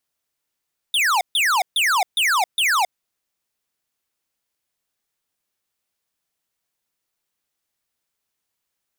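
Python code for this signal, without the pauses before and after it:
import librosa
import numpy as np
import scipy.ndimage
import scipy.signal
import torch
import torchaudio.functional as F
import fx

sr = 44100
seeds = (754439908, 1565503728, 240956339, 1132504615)

y = fx.laser_zaps(sr, level_db=-18.0, start_hz=3700.0, end_hz=690.0, length_s=0.27, wave='square', shots=5, gap_s=0.14)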